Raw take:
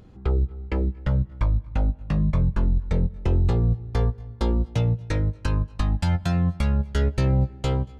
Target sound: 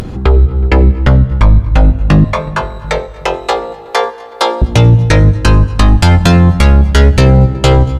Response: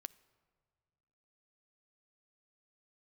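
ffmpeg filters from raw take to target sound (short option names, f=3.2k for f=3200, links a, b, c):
-filter_complex "[0:a]asettb=1/sr,asplit=3[a][b][c];[a]atrim=end=2.244[d];[b]atrim=start=2.24:end=4.62,asetpts=PTS-STARTPTS,afade=t=in:d=0.004:c=qsin,afade=t=out:st=2.376:d=0.004:c=qsin,highpass=f=550:w=0.5412,highpass=f=550:w=1.3066[e];[c]atrim=start=4.616[f];[d][e]acrossfade=d=0.004:c1=hsin:c2=qsin[g];[g][f]acrossfade=d=0.004:c1=qsin:c2=hsin,acompressor=mode=upward:threshold=-40dB:ratio=2.5,asplit=2[h][i];[i]adelay=370,lowpass=f=1.1k:p=1,volume=-23dB,asplit=2[j][k];[k]adelay=370,lowpass=f=1.1k:p=1,volume=0.52,asplit=2[l][m];[m]adelay=370,lowpass=f=1.1k:p=1,volume=0.52[n];[h][j][l][n]amix=inputs=4:normalize=0,acompressor=threshold=-20dB:ratio=6[o];[1:a]atrim=start_sample=2205,asetrate=28665,aresample=44100[p];[o][p]afir=irnorm=-1:irlink=0,apsyclip=27.5dB,volume=-1.5dB"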